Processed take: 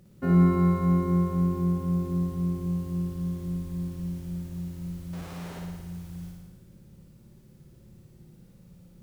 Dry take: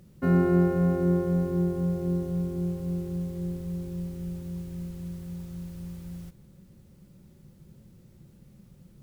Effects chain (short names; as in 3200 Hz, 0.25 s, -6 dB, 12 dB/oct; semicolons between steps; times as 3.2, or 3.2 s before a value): 5.13–5.59 Schmitt trigger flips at -48 dBFS; flutter echo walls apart 9.8 m, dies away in 1.3 s; gain -2.5 dB